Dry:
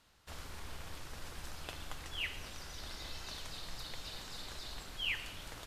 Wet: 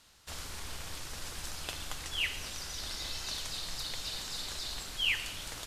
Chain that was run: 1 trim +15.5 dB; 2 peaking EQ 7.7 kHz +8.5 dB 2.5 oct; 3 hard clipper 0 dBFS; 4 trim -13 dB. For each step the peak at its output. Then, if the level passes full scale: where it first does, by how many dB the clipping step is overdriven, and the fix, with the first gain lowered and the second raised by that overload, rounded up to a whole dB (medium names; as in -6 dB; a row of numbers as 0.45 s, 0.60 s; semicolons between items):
-8.0 dBFS, -5.0 dBFS, -5.0 dBFS, -18.0 dBFS; nothing clips